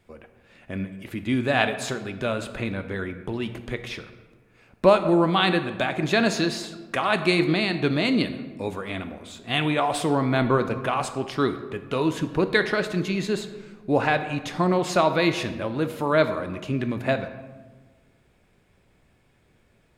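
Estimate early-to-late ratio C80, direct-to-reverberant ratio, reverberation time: 12.5 dB, 9.0 dB, 1.4 s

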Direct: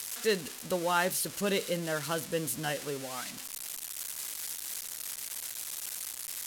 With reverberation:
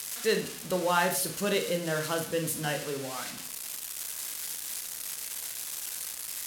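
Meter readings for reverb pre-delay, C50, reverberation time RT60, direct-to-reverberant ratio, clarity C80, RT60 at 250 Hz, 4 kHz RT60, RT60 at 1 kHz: 27 ms, 9.0 dB, 0.45 s, 5.0 dB, 13.5 dB, 0.60 s, 0.35 s, 0.45 s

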